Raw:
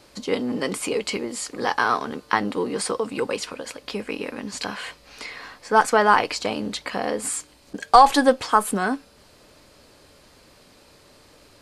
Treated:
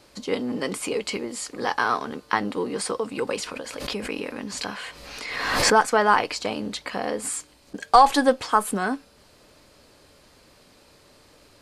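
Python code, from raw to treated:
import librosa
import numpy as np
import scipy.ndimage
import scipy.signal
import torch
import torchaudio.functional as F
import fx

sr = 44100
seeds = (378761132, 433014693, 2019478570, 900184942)

y = fx.pre_swell(x, sr, db_per_s=38.0, at=(3.27, 5.79), fade=0.02)
y = y * 10.0 ** (-2.0 / 20.0)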